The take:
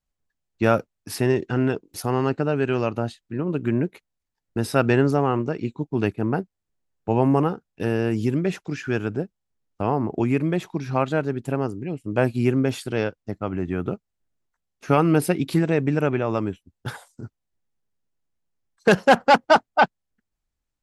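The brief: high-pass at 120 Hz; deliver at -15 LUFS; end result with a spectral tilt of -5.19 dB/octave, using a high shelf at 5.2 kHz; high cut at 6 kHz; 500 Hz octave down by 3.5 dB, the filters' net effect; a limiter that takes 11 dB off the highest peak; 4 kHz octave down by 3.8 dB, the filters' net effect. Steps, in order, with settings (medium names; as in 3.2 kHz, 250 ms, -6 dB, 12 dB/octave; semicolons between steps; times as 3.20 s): high-pass 120 Hz; low-pass 6 kHz; peaking EQ 500 Hz -4.5 dB; peaking EQ 4 kHz -6 dB; treble shelf 5.2 kHz +3 dB; trim +13.5 dB; peak limiter -2.5 dBFS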